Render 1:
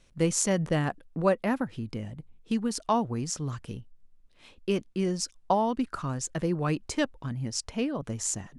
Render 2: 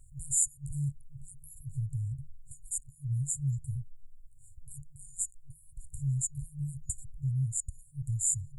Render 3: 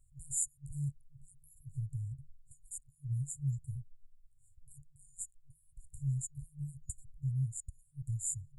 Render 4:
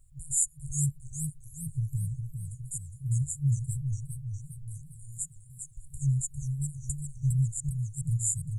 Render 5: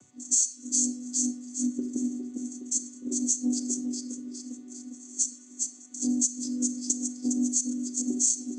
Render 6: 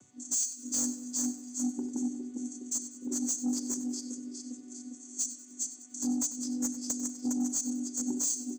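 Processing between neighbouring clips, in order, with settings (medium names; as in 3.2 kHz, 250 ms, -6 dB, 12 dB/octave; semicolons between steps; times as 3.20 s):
FFT band-reject 150–6900 Hz; in parallel at +2.5 dB: compression, threshold -43 dBFS, peak gain reduction 16.5 dB; on the sum: trim +1.5 dB
dynamic bell 7 kHz, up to -4 dB, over -43 dBFS, Q 0.91; upward expansion 1.5:1, over -45 dBFS; trim -2.5 dB
modulated delay 407 ms, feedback 57%, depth 150 cents, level -6.5 dB; trim +7.5 dB
vocoder on a held chord minor triad, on B3; reverberation RT60 0.90 s, pre-delay 26 ms, DRR 9.5 dB; compression 4:1, threshold -29 dBFS, peak gain reduction 12.5 dB; trim +7 dB
saturation -21 dBFS, distortion -12 dB; feedback delay 96 ms, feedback 46%, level -14.5 dB; trim -2 dB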